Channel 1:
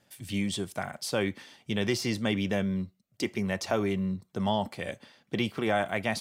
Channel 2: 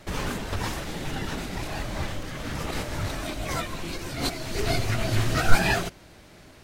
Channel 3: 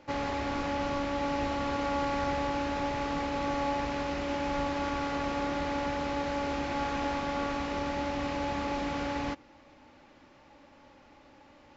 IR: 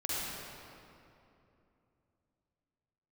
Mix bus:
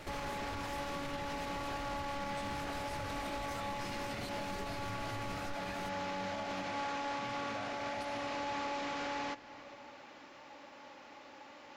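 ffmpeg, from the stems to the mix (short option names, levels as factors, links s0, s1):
-filter_complex "[0:a]aecho=1:1:1.4:0.98,adelay=1850,volume=0.15,asplit=2[s0][s1];[s1]volume=0.596[s2];[1:a]acompressor=threshold=0.0501:ratio=6,volume=0.75[s3];[2:a]highpass=f=580:p=1,aeval=exprs='0.0841*(cos(1*acos(clip(val(0)/0.0841,-1,1)))-cos(1*PI/2))+0.0119*(cos(5*acos(clip(val(0)/0.0841,-1,1)))-cos(5*PI/2))':c=same,volume=1.12,asplit=2[s4][s5];[s5]volume=0.0794[s6];[3:a]atrim=start_sample=2205[s7];[s2][s6]amix=inputs=2:normalize=0[s8];[s8][s7]afir=irnorm=-1:irlink=0[s9];[s0][s3][s4][s9]amix=inputs=4:normalize=0,alimiter=level_in=2.37:limit=0.0631:level=0:latency=1:release=261,volume=0.422"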